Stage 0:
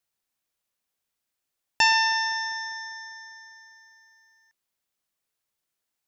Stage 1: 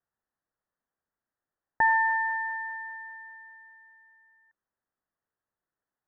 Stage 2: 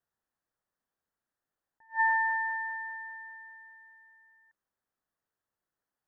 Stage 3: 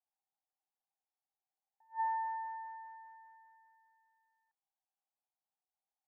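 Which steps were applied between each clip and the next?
steep low-pass 1.9 kHz 96 dB/octave
attacks held to a fixed rise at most 320 dB/s
band-pass filter 790 Hz, Q 9.2; trim +2.5 dB

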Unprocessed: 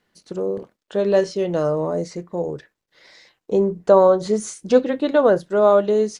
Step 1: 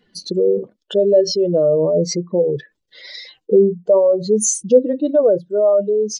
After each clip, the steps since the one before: spectral contrast enhancement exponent 2.1; gain riding within 5 dB 0.5 s; resonant high shelf 2.4 kHz +9 dB, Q 1.5; trim +4 dB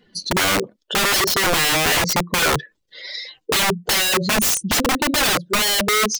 integer overflow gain 16.5 dB; trim +3.5 dB

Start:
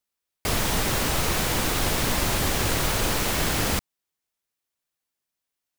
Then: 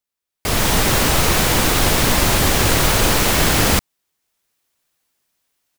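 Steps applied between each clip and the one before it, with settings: level rider gain up to 15 dB; trim -1.5 dB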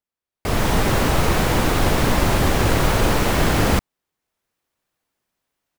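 treble shelf 2.4 kHz -11 dB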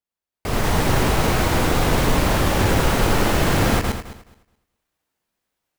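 backward echo that repeats 106 ms, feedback 44%, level -2.5 dB; trim -2.5 dB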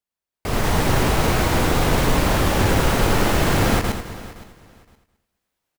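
feedback delay 517 ms, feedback 21%, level -18 dB

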